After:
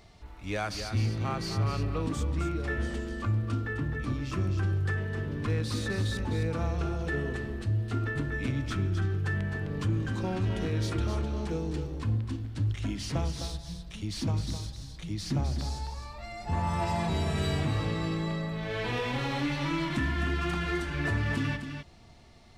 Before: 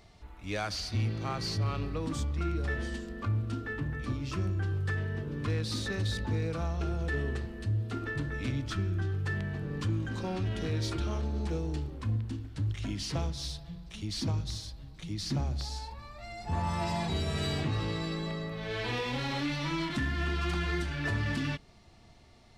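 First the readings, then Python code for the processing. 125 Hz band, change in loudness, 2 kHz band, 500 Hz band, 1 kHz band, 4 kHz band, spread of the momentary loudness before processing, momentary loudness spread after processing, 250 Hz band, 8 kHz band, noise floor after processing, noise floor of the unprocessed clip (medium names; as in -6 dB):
+2.5 dB, +2.0 dB, +2.0 dB, +2.5 dB, +2.5 dB, -1.0 dB, 6 LU, 7 LU, +2.5 dB, +0.5 dB, -46 dBFS, -55 dBFS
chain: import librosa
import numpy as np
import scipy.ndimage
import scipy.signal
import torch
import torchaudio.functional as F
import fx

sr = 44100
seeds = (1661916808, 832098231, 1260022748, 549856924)

p1 = x + fx.echo_single(x, sr, ms=258, db=-8.0, dry=0)
p2 = fx.dynamic_eq(p1, sr, hz=4500.0, q=1.3, threshold_db=-52.0, ratio=4.0, max_db=-5)
y = p2 * librosa.db_to_amplitude(2.0)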